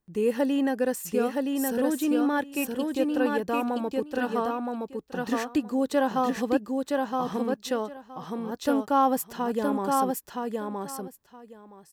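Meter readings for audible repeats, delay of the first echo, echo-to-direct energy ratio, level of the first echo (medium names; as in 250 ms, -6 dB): 2, 969 ms, -3.0 dB, -3.0 dB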